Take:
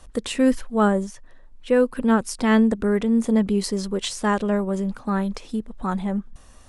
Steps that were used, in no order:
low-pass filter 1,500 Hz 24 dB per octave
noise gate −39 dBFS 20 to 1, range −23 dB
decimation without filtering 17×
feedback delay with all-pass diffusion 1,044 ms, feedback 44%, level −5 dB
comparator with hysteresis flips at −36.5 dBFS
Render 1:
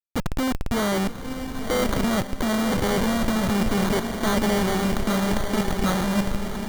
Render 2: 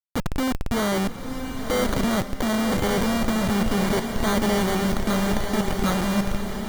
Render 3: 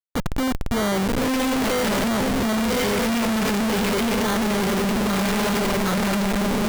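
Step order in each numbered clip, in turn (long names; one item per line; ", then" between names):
low-pass filter, then noise gate, then comparator with hysteresis, then feedback delay with all-pass diffusion, then decimation without filtering
noise gate, then low-pass filter, then comparator with hysteresis, then decimation without filtering, then feedback delay with all-pass diffusion
low-pass filter, then decimation without filtering, then feedback delay with all-pass diffusion, then comparator with hysteresis, then noise gate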